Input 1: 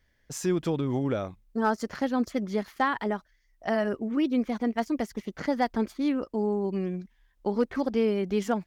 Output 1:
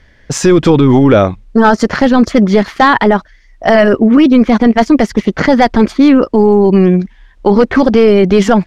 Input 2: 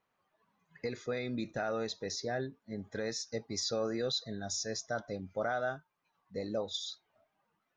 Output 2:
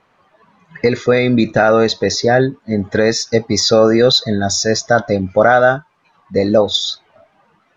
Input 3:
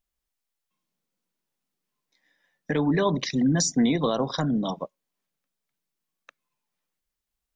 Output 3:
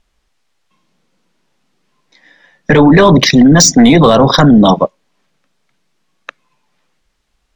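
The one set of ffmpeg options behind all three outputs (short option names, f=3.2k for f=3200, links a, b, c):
-af "adynamicsmooth=sensitivity=1:basefreq=6k,apsyclip=25dB,volume=-1.5dB"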